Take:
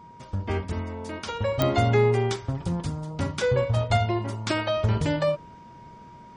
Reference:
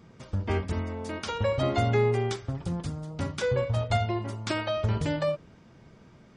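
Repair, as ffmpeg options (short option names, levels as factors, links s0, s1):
-af "adeclick=t=4,bandreject=f=950:w=30,asetnsamples=n=441:p=0,asendcmd='1.59 volume volume -3.5dB',volume=1"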